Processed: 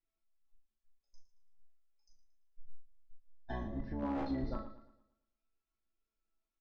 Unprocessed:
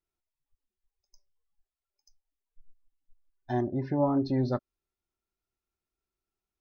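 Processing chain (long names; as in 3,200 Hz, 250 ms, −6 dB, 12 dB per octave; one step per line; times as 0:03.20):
sub-octave generator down 2 octaves, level +2 dB
resonators tuned to a chord A3 major, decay 0.27 s
wave folding −34.5 dBFS
high-frequency loss of the air 99 metres
ambience of single reflections 38 ms −4.5 dB, 74 ms −17 dB
downward compressor, threshold −46 dBFS, peak gain reduction 8.5 dB
0:03.52–0:04.03: parametric band 390 Hz −8 dB 1.1 octaves
feedback echo with a swinging delay time 113 ms, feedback 42%, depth 56 cents, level −13 dB
level +13 dB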